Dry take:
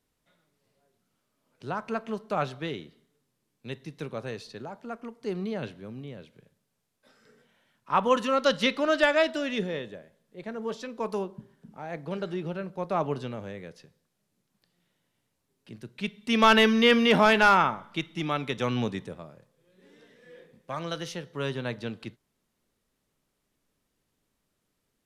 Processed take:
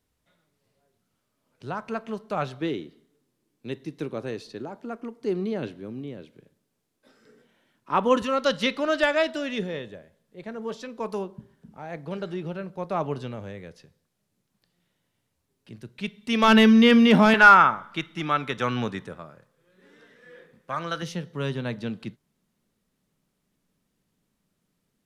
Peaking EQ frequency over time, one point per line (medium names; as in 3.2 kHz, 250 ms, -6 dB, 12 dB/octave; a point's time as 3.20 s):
peaking EQ +9 dB 0.86 oct
72 Hz
from 2.61 s 320 Hz
from 8.22 s 72 Hz
from 16.48 s 210 Hz
from 17.34 s 1.4 kHz
from 21.02 s 180 Hz